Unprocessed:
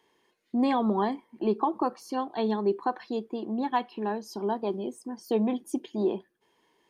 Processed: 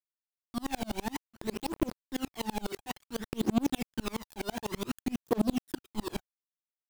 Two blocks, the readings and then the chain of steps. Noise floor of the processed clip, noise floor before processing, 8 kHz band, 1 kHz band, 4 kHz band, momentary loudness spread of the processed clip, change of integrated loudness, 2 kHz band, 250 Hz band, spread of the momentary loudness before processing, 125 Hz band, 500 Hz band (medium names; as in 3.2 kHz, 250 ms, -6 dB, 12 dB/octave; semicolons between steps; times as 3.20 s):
under -85 dBFS, -71 dBFS, +6.5 dB, -10.0 dB, +3.0 dB, 10 LU, -5.5 dB, -0.5 dB, -4.0 dB, 8 LU, no reading, -8.5 dB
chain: high-pass 140 Hz 24 dB/octave; in parallel at +2 dB: compression 10:1, threshold -36 dBFS, peak gain reduction 15.5 dB; on the sum: saturation -24.5 dBFS, distortion -11 dB; static phaser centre 2.6 kHz, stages 4; companded quantiser 2-bit; phaser 0.56 Hz, delay 1.4 ms, feedback 60%; sawtooth tremolo in dB swelling 12 Hz, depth 35 dB